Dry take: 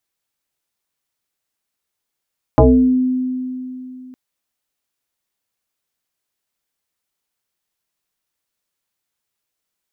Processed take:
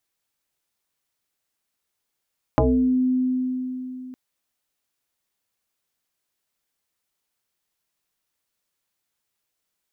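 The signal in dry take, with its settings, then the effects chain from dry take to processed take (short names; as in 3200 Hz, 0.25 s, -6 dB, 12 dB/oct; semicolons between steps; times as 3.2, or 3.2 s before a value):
FM tone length 1.56 s, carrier 255 Hz, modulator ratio 0.75, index 3.8, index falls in 0.55 s exponential, decay 3.11 s, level -5 dB
compressor 4:1, threshold -19 dBFS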